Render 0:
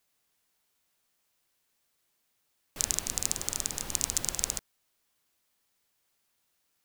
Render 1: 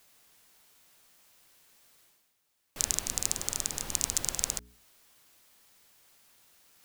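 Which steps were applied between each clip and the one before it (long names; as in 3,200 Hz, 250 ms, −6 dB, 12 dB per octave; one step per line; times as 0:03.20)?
mains-hum notches 60/120/180/240/300/360/420 Hz
reversed playback
upward compression, threshold −49 dBFS
reversed playback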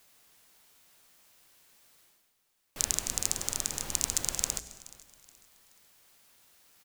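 repeating echo 425 ms, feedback 34%, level −20 dB
on a send at −16 dB: convolution reverb RT60 1.0 s, pre-delay 120 ms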